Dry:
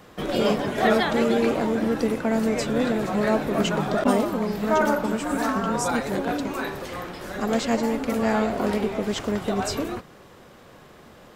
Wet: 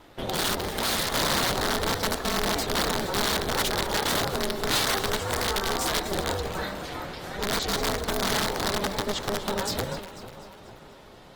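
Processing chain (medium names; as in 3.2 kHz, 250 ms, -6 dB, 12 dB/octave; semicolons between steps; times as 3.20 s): integer overflow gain 17.5 dB; ring modulator 200 Hz; peaking EQ 3.9 kHz +6 dB 0.85 oct; two-band feedback delay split 1.3 kHz, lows 447 ms, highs 246 ms, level -13 dB; dynamic bell 2.6 kHz, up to -6 dB, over -45 dBFS, Q 3.6; Opus 24 kbps 48 kHz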